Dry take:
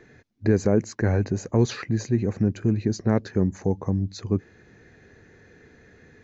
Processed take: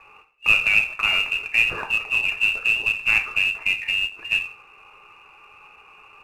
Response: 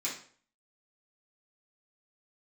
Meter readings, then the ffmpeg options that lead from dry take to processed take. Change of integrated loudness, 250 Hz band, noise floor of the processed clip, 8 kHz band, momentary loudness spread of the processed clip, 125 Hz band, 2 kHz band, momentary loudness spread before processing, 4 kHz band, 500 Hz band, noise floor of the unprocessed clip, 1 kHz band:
+5.0 dB, under -20 dB, -51 dBFS, no reading, 6 LU, under -20 dB, +21.5 dB, 5 LU, +18.0 dB, -17.0 dB, -55 dBFS, +3.0 dB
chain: -filter_complex "[0:a]asplit=2[s0][s1];[1:a]atrim=start_sample=2205,afade=t=out:st=0.35:d=0.01,atrim=end_sample=15876[s2];[s1][s2]afir=irnorm=-1:irlink=0,volume=0.562[s3];[s0][s3]amix=inputs=2:normalize=0,lowpass=f=2500:t=q:w=0.5098,lowpass=f=2500:t=q:w=0.6013,lowpass=f=2500:t=q:w=0.9,lowpass=f=2500:t=q:w=2.563,afreqshift=-2900,acrusher=bits=3:mode=log:mix=0:aa=0.000001,aemphasis=mode=reproduction:type=bsi,volume=1.41"

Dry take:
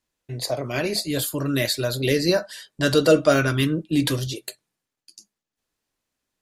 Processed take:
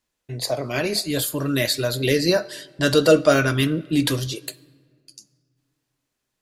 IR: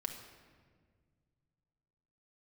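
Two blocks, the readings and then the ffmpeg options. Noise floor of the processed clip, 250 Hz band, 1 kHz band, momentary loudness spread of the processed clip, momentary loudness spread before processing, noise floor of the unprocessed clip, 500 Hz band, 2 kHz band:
-80 dBFS, +1.0 dB, +1.5 dB, 14 LU, 14 LU, under -85 dBFS, +1.5 dB, +1.5 dB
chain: -filter_complex "[0:a]asplit=2[s0][s1];[1:a]atrim=start_sample=2205,lowshelf=f=270:g=-11.5[s2];[s1][s2]afir=irnorm=-1:irlink=0,volume=0.282[s3];[s0][s3]amix=inputs=2:normalize=0"

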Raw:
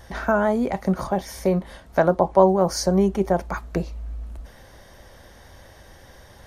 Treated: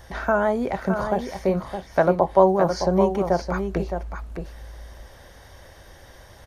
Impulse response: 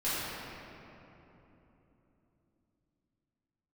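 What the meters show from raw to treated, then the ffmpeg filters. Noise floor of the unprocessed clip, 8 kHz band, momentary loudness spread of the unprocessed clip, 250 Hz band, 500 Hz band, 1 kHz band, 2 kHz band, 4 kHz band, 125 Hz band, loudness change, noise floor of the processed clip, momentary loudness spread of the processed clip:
-48 dBFS, -9.0 dB, 15 LU, -2.0 dB, +0.5 dB, +0.5 dB, +0.5 dB, -4.0 dB, -1.5 dB, -0.5 dB, -48 dBFS, 17 LU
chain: -filter_complex "[0:a]acrossover=split=4800[s0][s1];[s1]acompressor=threshold=0.002:ratio=4:attack=1:release=60[s2];[s0][s2]amix=inputs=2:normalize=0,equalizer=f=220:w=1.9:g=-4,asplit=2[s3][s4];[s4]aecho=0:1:615:0.422[s5];[s3][s5]amix=inputs=2:normalize=0"

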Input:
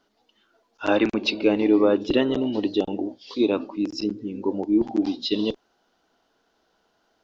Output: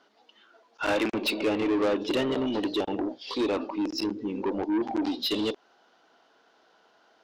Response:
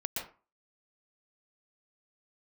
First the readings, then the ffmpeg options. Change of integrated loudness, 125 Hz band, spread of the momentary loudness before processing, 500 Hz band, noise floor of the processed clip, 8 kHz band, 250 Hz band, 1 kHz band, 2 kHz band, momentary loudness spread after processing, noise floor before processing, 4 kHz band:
-4.5 dB, -5.5 dB, 10 LU, -5.0 dB, -64 dBFS, no reading, -5.5 dB, -0.5 dB, -2.0 dB, 6 LU, -69 dBFS, -1.0 dB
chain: -filter_complex "[0:a]highpass=f=570:p=1,aemphasis=mode=reproduction:type=50fm,asplit=2[s0][s1];[s1]acompressor=threshold=0.0224:ratio=6,volume=0.708[s2];[s0][s2]amix=inputs=2:normalize=0,asoftclip=type=tanh:threshold=0.112,aeval=exprs='0.112*(cos(1*acos(clip(val(0)/0.112,-1,1)))-cos(1*PI/2))+0.0126*(cos(5*acos(clip(val(0)/0.112,-1,1)))-cos(5*PI/2))+0.00178*(cos(6*acos(clip(val(0)/0.112,-1,1)))-cos(6*PI/2))+0.00224*(cos(8*acos(clip(val(0)/0.112,-1,1)))-cos(8*PI/2))':c=same"

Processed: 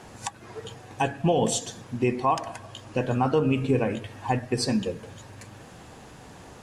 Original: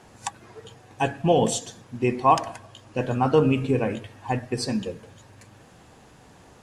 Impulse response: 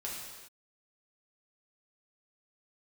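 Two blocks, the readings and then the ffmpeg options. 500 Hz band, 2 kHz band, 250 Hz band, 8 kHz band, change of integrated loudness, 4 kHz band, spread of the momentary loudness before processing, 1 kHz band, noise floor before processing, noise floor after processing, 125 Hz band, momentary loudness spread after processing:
-2.5 dB, -1.0 dB, -1.0 dB, +0.5 dB, -2.5 dB, 0.0 dB, 16 LU, -3.5 dB, -52 dBFS, -47 dBFS, -1.0 dB, 21 LU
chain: -filter_complex "[0:a]asplit=2[s0][s1];[s1]acompressor=threshold=0.0158:ratio=6,volume=0.794[s2];[s0][s2]amix=inputs=2:normalize=0,alimiter=limit=0.237:level=0:latency=1:release=291"

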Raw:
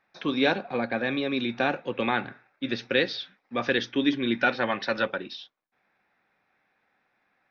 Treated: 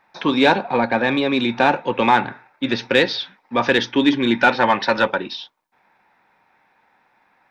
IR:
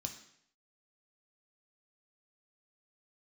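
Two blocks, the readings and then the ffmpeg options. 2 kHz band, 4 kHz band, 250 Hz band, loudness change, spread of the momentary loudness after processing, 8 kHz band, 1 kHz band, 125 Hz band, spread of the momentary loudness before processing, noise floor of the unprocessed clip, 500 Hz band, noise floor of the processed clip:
+8.0 dB, +8.0 dB, +8.0 dB, +9.0 dB, 9 LU, no reading, +12.5 dB, +8.0 dB, 10 LU, -74 dBFS, +8.5 dB, -63 dBFS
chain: -filter_complex "[0:a]equalizer=f=920:t=o:w=0.26:g=13,asplit=2[s0][s1];[s1]asoftclip=type=tanh:threshold=0.1,volume=0.668[s2];[s0][s2]amix=inputs=2:normalize=0,volume=1.68"

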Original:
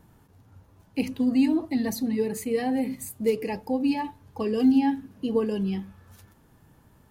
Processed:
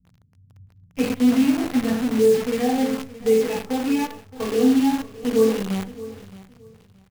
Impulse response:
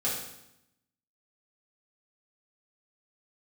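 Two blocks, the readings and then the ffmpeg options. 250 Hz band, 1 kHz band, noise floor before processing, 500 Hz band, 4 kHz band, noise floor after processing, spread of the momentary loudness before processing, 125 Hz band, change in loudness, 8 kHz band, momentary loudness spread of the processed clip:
+4.0 dB, +4.0 dB, -59 dBFS, +8.0 dB, +7.5 dB, -57 dBFS, 10 LU, +3.5 dB, +5.0 dB, +5.5 dB, 12 LU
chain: -filter_complex "[0:a]aresample=8000,aresample=44100,bandreject=f=133.9:t=h:w=4,bandreject=f=267.8:t=h:w=4,bandreject=f=401.7:t=h:w=4,bandreject=f=535.6:t=h:w=4[s0];[1:a]atrim=start_sample=2205,afade=t=out:st=0.17:d=0.01,atrim=end_sample=7938,asetrate=42336,aresample=44100[s1];[s0][s1]afir=irnorm=-1:irlink=0,acrossover=split=200[s2][s3];[s3]acrusher=bits=5:dc=4:mix=0:aa=0.000001[s4];[s2][s4]amix=inputs=2:normalize=0,dynaudnorm=f=160:g=7:m=2,asplit=2[s5][s6];[s6]aecho=0:1:620|1240:0.133|0.028[s7];[s5][s7]amix=inputs=2:normalize=0,volume=0.473"

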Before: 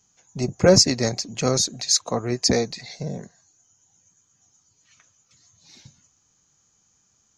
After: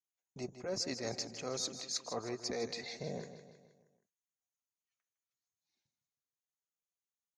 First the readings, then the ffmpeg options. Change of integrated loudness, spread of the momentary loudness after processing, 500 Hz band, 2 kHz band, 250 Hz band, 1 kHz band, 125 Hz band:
-18.5 dB, 10 LU, -18.0 dB, -15.5 dB, -19.5 dB, -15.5 dB, -22.5 dB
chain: -af "bass=f=250:g=-10,treble=f=4000:g=-5,agate=range=0.0316:threshold=0.00501:ratio=16:detection=peak,areverse,acompressor=threshold=0.0282:ratio=10,areverse,aecho=1:1:158|316|474|632|790:0.282|0.144|0.0733|0.0374|0.0191,volume=0.596"

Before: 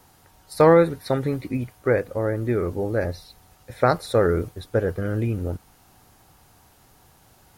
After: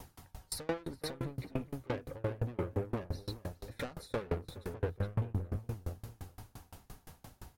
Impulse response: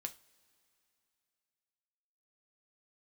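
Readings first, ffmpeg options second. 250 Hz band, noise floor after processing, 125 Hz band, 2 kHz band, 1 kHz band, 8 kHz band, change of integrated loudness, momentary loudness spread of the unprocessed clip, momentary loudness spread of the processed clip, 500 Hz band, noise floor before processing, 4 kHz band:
-15.5 dB, -68 dBFS, -11.0 dB, -16.5 dB, -19.5 dB, -4.5 dB, -17.0 dB, 13 LU, 18 LU, -19.5 dB, -56 dBFS, -7.5 dB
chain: -filter_complex "[0:a]lowshelf=f=170:g=8,acompressor=threshold=0.0355:ratio=2.5,asoftclip=type=tanh:threshold=0.0266,flanger=delay=0.3:depth=4.6:regen=-54:speed=0.36:shape=triangular,asplit=2[s0][s1];[s1]adelay=418,lowpass=f=2400:p=1,volume=0.501,asplit=2[s2][s3];[s3]adelay=418,lowpass=f=2400:p=1,volume=0.33,asplit=2[s4][s5];[s5]adelay=418,lowpass=f=2400:p=1,volume=0.33,asplit=2[s6][s7];[s7]adelay=418,lowpass=f=2400:p=1,volume=0.33[s8];[s2][s4][s6][s8]amix=inputs=4:normalize=0[s9];[s0][s9]amix=inputs=2:normalize=0,aeval=exprs='val(0)*pow(10,-30*if(lt(mod(5.8*n/s,1),2*abs(5.8)/1000),1-mod(5.8*n/s,1)/(2*abs(5.8)/1000),(mod(5.8*n/s,1)-2*abs(5.8)/1000)/(1-2*abs(5.8)/1000))/20)':c=same,volume=2.99"

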